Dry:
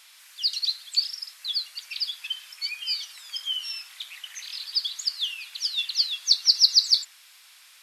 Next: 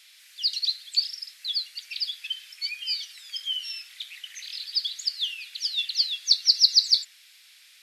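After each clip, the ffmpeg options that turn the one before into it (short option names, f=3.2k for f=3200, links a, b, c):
-af "equalizer=f=1k:t=o:w=1:g=-12,equalizer=f=2k:t=o:w=1:g=5,equalizer=f=4k:t=o:w=1:g=4,volume=-4dB"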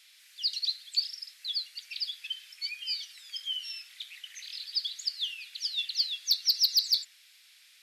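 -af "volume=13.5dB,asoftclip=hard,volume=-13.5dB,volume=-4.5dB"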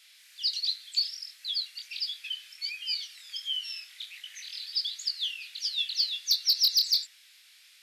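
-af "flanger=delay=19:depth=7.3:speed=1.4,volume=4.5dB"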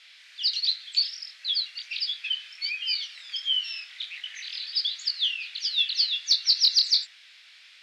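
-af "highpass=290,lowpass=3.9k,volume=8dB"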